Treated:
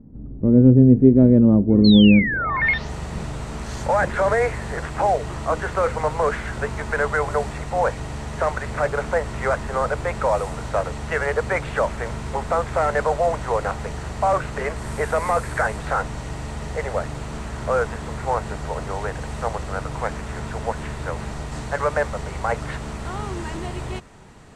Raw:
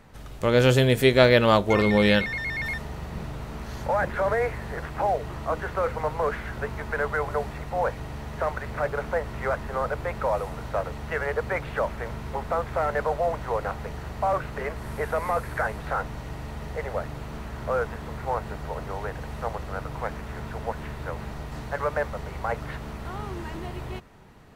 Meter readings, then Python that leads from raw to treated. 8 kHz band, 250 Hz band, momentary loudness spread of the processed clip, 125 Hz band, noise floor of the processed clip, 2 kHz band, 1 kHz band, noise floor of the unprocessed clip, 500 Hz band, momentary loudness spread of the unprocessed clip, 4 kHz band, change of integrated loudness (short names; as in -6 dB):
+7.5 dB, +11.5 dB, 17 LU, +6.5 dB, -33 dBFS, +3.5 dB, +4.5 dB, -38 dBFS, +2.5 dB, 16 LU, +2.0 dB, +5.5 dB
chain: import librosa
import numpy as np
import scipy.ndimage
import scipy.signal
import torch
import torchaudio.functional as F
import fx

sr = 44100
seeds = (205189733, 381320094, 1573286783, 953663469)

y = fx.filter_sweep_lowpass(x, sr, from_hz=260.0, to_hz=8100.0, start_s=2.28, end_s=2.91, q=2.9)
y = fx.spec_paint(y, sr, seeds[0], shape='fall', start_s=1.84, length_s=0.76, low_hz=980.0, high_hz=4400.0, level_db=-29.0)
y = y * librosa.db_to_amplitude(5.0)